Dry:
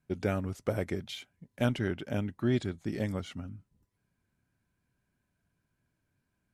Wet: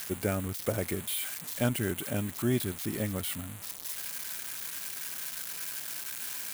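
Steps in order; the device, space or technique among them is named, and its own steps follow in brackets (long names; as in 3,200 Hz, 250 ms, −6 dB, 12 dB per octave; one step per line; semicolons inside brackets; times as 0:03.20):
budget class-D amplifier (gap after every zero crossing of 0.097 ms; spike at every zero crossing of −21.5 dBFS)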